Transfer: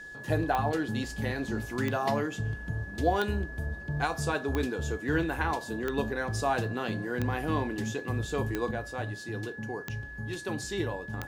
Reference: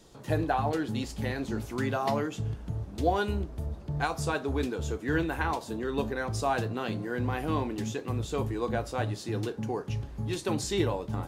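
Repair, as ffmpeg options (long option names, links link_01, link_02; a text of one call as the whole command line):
ffmpeg -i in.wav -af "adeclick=threshold=4,bandreject=frequency=1700:width=30,asetnsamples=nb_out_samples=441:pad=0,asendcmd='8.71 volume volume 4.5dB',volume=0dB" out.wav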